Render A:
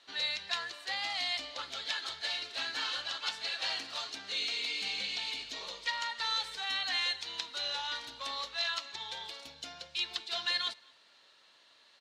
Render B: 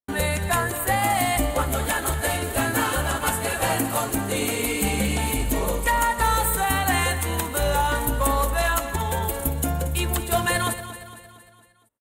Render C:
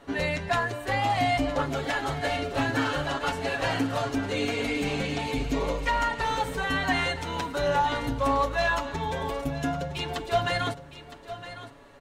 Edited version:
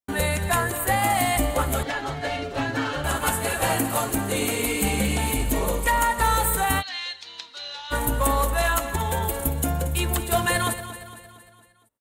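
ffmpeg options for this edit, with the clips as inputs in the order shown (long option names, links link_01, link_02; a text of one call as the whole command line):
ffmpeg -i take0.wav -i take1.wav -i take2.wav -filter_complex "[1:a]asplit=3[link_01][link_02][link_03];[link_01]atrim=end=1.832[link_04];[2:a]atrim=start=1.828:end=3.042[link_05];[link_02]atrim=start=3.038:end=6.83[link_06];[0:a]atrim=start=6.79:end=7.94[link_07];[link_03]atrim=start=7.9[link_08];[link_04][link_05]acrossfade=duration=0.004:curve1=hsin:curve2=hsin[link_09];[link_09][link_06]acrossfade=duration=0.004:curve1=hsin:curve2=hsin[link_10];[link_10][link_07]acrossfade=duration=0.04:curve1=tri:curve2=tri[link_11];[link_11][link_08]acrossfade=duration=0.04:curve1=tri:curve2=tri" out.wav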